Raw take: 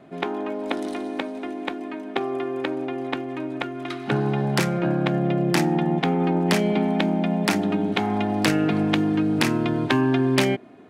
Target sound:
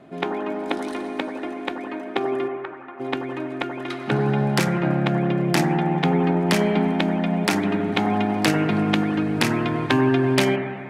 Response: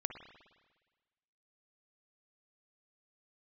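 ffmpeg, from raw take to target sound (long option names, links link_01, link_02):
-filter_complex "[0:a]asplit=3[link_01][link_02][link_03];[link_01]afade=type=out:start_time=2.47:duration=0.02[link_04];[link_02]bandpass=frequency=1200:width_type=q:width=2.5:csg=0,afade=type=in:start_time=2.47:duration=0.02,afade=type=out:start_time=2.99:duration=0.02[link_05];[link_03]afade=type=in:start_time=2.99:duration=0.02[link_06];[link_04][link_05][link_06]amix=inputs=3:normalize=0[link_07];[1:a]atrim=start_sample=2205,asetrate=28665,aresample=44100[link_08];[link_07][link_08]afir=irnorm=-1:irlink=0"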